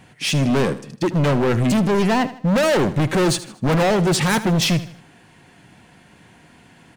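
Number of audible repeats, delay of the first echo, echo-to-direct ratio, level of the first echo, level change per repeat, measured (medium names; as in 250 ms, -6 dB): 3, 78 ms, -14.5 dB, -15.0 dB, -8.0 dB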